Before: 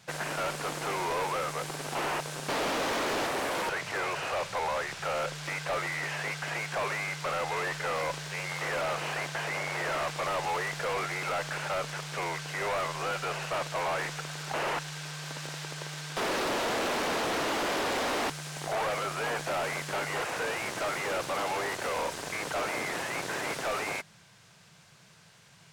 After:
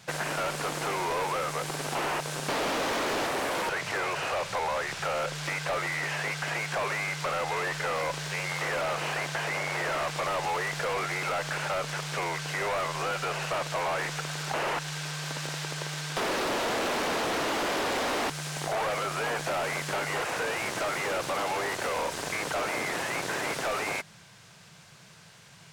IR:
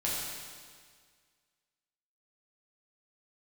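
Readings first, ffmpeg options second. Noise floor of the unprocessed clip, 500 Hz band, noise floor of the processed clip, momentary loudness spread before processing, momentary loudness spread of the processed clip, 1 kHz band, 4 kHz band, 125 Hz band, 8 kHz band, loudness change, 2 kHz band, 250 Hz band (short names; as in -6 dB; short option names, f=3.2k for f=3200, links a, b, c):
-57 dBFS, +1.5 dB, -53 dBFS, 5 LU, 4 LU, +1.5 dB, +2.0 dB, +3.0 dB, +2.5 dB, +2.0 dB, +2.0 dB, +2.0 dB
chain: -af "acompressor=threshold=-32dB:ratio=6,volume=4.5dB"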